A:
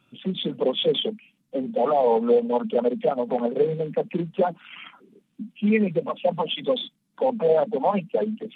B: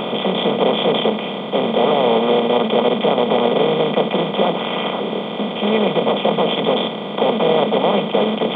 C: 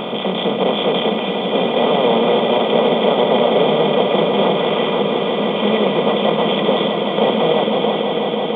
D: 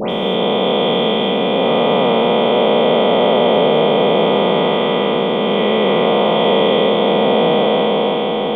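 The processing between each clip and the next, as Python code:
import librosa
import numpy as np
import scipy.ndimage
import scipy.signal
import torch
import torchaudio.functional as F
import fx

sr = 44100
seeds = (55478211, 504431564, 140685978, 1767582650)

y1 = fx.bin_compress(x, sr, power=0.2)
y1 = y1 * librosa.db_to_amplitude(-2.5)
y2 = fx.fade_out_tail(y1, sr, length_s=1.22)
y2 = fx.echo_swell(y2, sr, ms=165, loudest=5, wet_db=-10)
y2 = y2 * librosa.db_to_amplitude(-1.0)
y3 = fx.spec_dilate(y2, sr, span_ms=480)
y3 = fx.dispersion(y3, sr, late='highs', ms=120.0, hz=2400.0)
y3 = y3 * librosa.db_to_amplitude(-4.5)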